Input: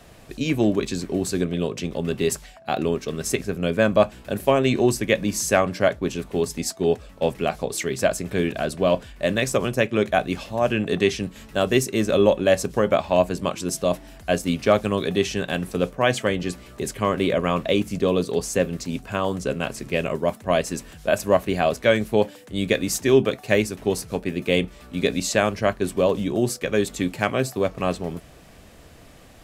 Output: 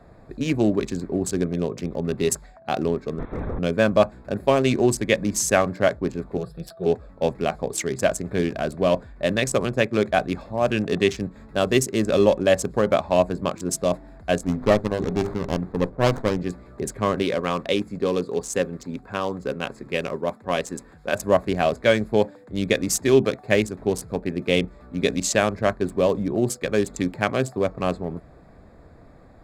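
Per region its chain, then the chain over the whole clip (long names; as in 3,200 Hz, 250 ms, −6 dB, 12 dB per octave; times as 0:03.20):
0:03.19–0:03.59: sign of each sample alone + low-pass filter 2,200 Hz 6 dB per octave + linear-prediction vocoder at 8 kHz whisper
0:06.37–0:06.86: phaser with its sweep stopped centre 1,400 Hz, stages 8 + comb filter 6 ms, depth 56%
0:14.43–0:16.38: mains-hum notches 50/100/150/200/250/300/350/400 Hz + windowed peak hold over 17 samples
0:17.22–0:21.15: low-shelf EQ 190 Hz −8.5 dB + notch filter 640 Hz, Q 8.9
whole clip: adaptive Wiener filter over 15 samples; dynamic equaliser 7,600 Hz, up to +5 dB, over −44 dBFS, Q 0.75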